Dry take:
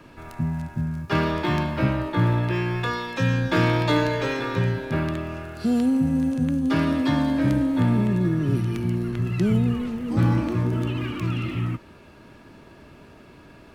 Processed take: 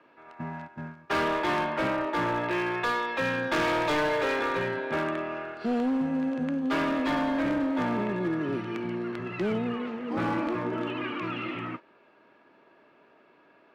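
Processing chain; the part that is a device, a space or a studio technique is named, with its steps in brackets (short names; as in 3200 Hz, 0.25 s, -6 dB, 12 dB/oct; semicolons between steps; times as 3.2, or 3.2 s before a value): walkie-talkie (BPF 410–2500 Hz; hard clip -26 dBFS, distortion -11 dB; gate -41 dBFS, range -10 dB); gain +3 dB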